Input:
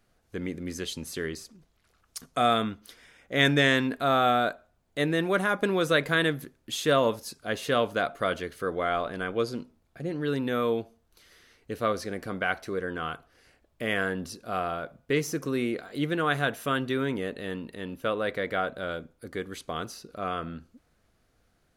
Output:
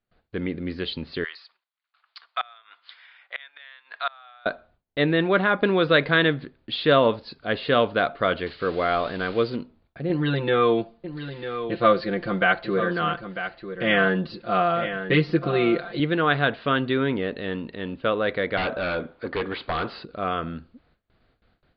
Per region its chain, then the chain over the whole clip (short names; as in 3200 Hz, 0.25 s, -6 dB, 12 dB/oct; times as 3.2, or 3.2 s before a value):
1.24–4.46 HPF 910 Hz 24 dB/oct + flipped gate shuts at -19 dBFS, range -27 dB
8.46–9.56 switching spikes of -26.5 dBFS + de-esser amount 50%
10.09–16 comb 5.8 ms, depth 96% + echo 0.947 s -10.5 dB
18.57–20.05 wrapped overs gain 23.5 dB + overdrive pedal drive 21 dB, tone 1700 Hz, clips at -23 dBFS
whole clip: steep low-pass 4600 Hz 96 dB/oct; gate with hold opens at -58 dBFS; gain +5 dB